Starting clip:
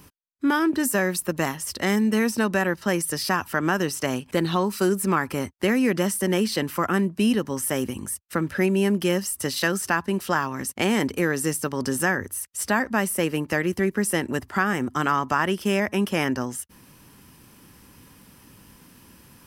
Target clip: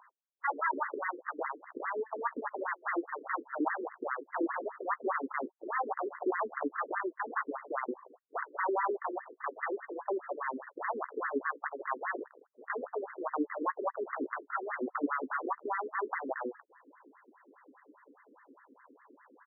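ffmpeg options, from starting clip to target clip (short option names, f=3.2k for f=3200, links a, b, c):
-filter_complex "[0:a]acrossover=split=280|7000[a][b][c];[a]acompressor=threshold=-40dB:ratio=5[d];[d][b][c]amix=inputs=3:normalize=0,aeval=exprs='(mod(12.6*val(0)+1,2)-1)/12.6':c=same,asplit=2[e][f];[f]adelay=14,volume=-10dB[g];[e][g]amix=inputs=2:normalize=0,afftfilt=real='re*between(b*sr/1024,340*pow(1500/340,0.5+0.5*sin(2*PI*4.9*pts/sr))/1.41,340*pow(1500/340,0.5+0.5*sin(2*PI*4.9*pts/sr))*1.41)':imag='im*between(b*sr/1024,340*pow(1500/340,0.5+0.5*sin(2*PI*4.9*pts/sr))/1.41,340*pow(1500/340,0.5+0.5*sin(2*PI*4.9*pts/sr))*1.41)':win_size=1024:overlap=0.75,volume=2dB"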